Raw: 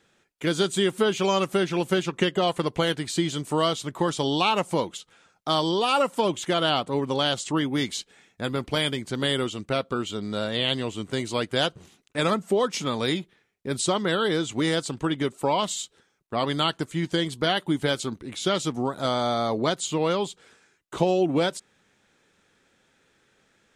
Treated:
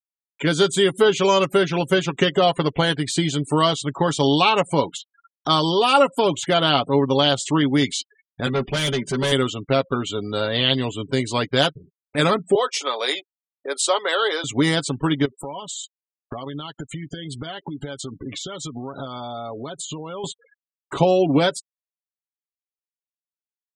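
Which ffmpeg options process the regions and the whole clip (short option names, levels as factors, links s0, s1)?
-filter_complex "[0:a]asettb=1/sr,asplit=3[s0][s1][s2];[s0]atrim=end=8.464[s3];[s1]atrim=start=8.46:end=9.32,asetpts=PTS-STARTPTS,afade=t=in:d=0.004:c=qsin,afade=t=out:st=0.856:d=0.004:c=qsin,bandreject=f=4300:w=9.4,aecho=1:1:5.2:0.99,atrim=end_sample=37926,asoftclip=type=hard:threshold=0.0562[s4];[s2]atrim=start=9.316[s5];[s3][s4]acrossfade=d=0.004:c1=hsin:c2=qsin[s6];[s6][s5]acrossfade=d=0.004:c1=qsin:c2=hsin,asettb=1/sr,asplit=3[s7][s8][s9];[s7]atrim=end=12.554[s10];[s8]atrim=start=12.55:end=14.44,asetpts=PTS-STARTPTS,afade=t=in:d=0.004:c=qsin,afade=t=out:st=1.886:d=0.004:c=qsin,highpass=f=460:w=0.5412,highpass=f=460:w=1.3066,deesser=0.3[s11];[s9]atrim=start=14.436[s12];[s10][s11]acrossfade=d=0.004:c1=hsin:c2=qsin[s13];[s13][s12]acrossfade=d=0.004:c1=qsin:c2=hsin,asettb=1/sr,asplit=3[s14][s15][s16];[s14]atrim=end=15.254[s17];[s15]atrim=start=15.25:end=20.24,asetpts=PTS-STARTPTS,afade=t=in:d=0.004:c=qsin,afade=t=out:st=4.986:d=0.004:c=qsin,acompressor=threshold=0.02:ratio=16:attack=3.2:release=140:knee=1:detection=peak,agate=range=0.0224:threshold=0.001:ratio=3:release=100:detection=peak[s18];[s16]atrim=start=20.236[s19];[s17][s18]acrossfade=d=0.004:c1=hsin:c2=qsin[s20];[s20][s19]acrossfade=d=0.004:c1=qsin:c2=hsin,afftfilt=real='re*gte(hypot(re,im),0.00891)':imag='im*gte(hypot(re,im),0.00891)':win_size=1024:overlap=0.75,aecho=1:1:7.2:0.49,acompressor=mode=upward:threshold=0.0251:ratio=2.5,volume=1.68"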